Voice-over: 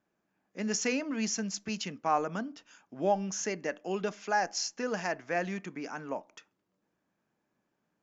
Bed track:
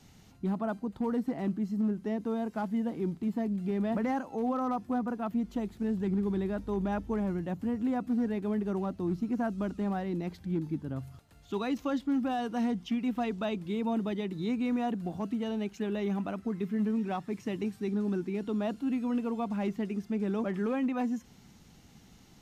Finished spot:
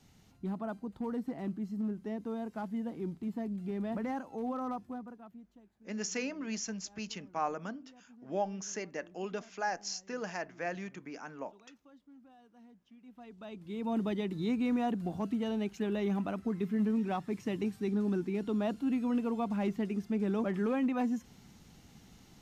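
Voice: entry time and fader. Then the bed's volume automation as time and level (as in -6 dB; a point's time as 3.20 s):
5.30 s, -5.5 dB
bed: 4.72 s -5.5 dB
5.67 s -28 dB
12.90 s -28 dB
14.00 s -0.5 dB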